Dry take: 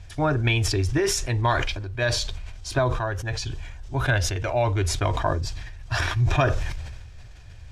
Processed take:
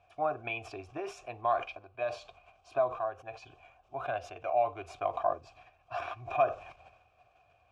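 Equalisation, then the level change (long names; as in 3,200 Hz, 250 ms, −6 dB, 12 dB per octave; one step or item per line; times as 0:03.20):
formant filter a
parametric band 4,200 Hz −5.5 dB 1.4 octaves
+2.5 dB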